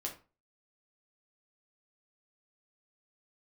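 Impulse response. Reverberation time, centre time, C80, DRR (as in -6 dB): 0.35 s, 17 ms, 15.5 dB, -0.5 dB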